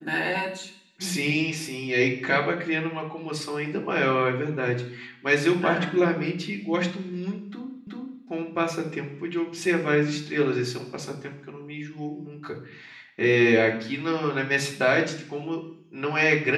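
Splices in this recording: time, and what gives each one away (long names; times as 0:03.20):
0:07.87: the same again, the last 0.38 s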